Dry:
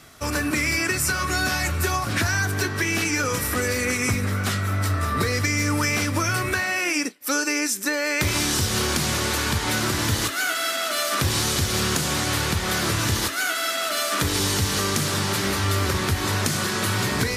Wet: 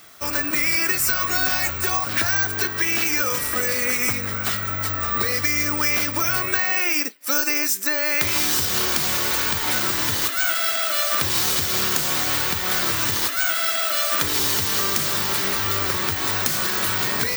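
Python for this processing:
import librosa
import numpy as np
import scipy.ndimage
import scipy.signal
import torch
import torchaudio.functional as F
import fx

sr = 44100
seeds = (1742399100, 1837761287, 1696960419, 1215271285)

y = fx.low_shelf(x, sr, hz=330.0, db=-11.0)
y = (np.kron(scipy.signal.resample_poly(y, 1, 2), np.eye(2)[0]) * 2)[:len(y)]
y = F.gain(torch.from_numpy(y), 1.0).numpy()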